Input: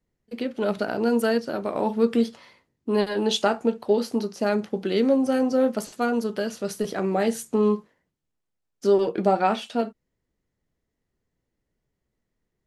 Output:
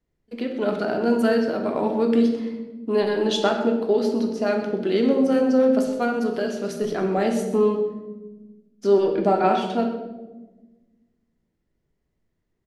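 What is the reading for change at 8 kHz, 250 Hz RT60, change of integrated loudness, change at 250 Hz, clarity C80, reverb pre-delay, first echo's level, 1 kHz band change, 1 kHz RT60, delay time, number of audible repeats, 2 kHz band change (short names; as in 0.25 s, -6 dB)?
-3.0 dB, 1.9 s, +2.5 dB, +3.0 dB, 8.0 dB, 3 ms, -14.0 dB, +1.5 dB, 0.95 s, 0.127 s, 1, +1.5 dB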